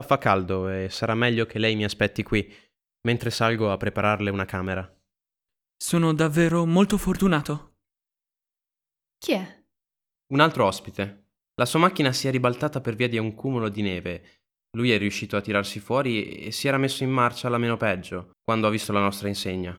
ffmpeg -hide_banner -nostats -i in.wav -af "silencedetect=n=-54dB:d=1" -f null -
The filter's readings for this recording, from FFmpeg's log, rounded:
silence_start: 7.70
silence_end: 9.22 | silence_duration: 1.52